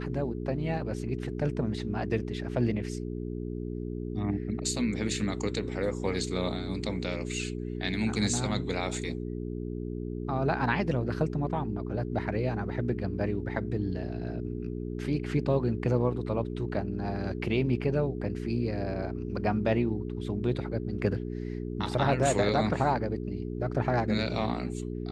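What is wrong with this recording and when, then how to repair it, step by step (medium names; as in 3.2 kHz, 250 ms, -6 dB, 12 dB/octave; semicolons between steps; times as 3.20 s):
hum 60 Hz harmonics 7 -35 dBFS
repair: de-hum 60 Hz, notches 7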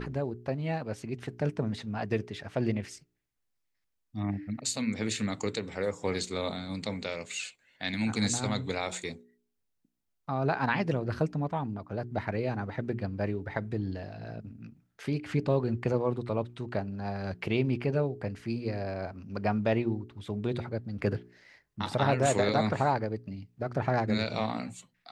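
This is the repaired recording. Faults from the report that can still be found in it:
nothing left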